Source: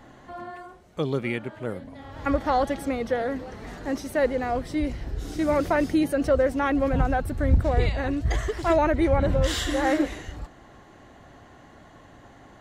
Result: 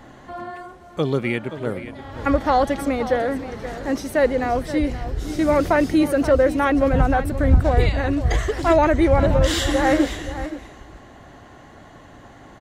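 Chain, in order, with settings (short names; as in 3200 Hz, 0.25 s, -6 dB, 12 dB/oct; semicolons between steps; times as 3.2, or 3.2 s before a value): echo 0.525 s -13 dB; gain +5 dB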